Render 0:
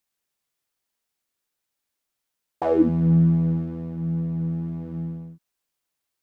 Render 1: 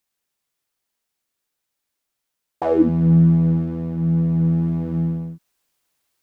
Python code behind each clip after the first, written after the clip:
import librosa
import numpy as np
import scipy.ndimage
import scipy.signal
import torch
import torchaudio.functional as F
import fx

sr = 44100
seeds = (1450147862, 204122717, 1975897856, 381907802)

y = fx.rider(x, sr, range_db=4, speed_s=2.0)
y = y * librosa.db_to_amplitude(5.0)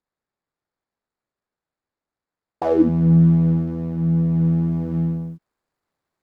y = scipy.ndimage.median_filter(x, 15, mode='constant')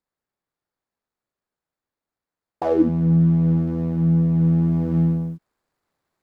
y = fx.rider(x, sr, range_db=3, speed_s=0.5)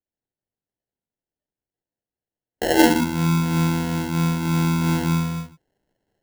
y = fx.rev_gated(x, sr, seeds[0], gate_ms=200, shape='flat', drr_db=-2.5)
y = fx.noise_reduce_blind(y, sr, reduce_db=10)
y = fx.sample_hold(y, sr, seeds[1], rate_hz=1200.0, jitter_pct=0)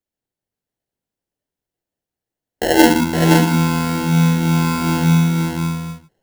y = x + 10.0 ** (-4.0 / 20.0) * np.pad(x, (int(517 * sr / 1000.0), 0))[:len(x)]
y = y * librosa.db_to_amplitude(4.0)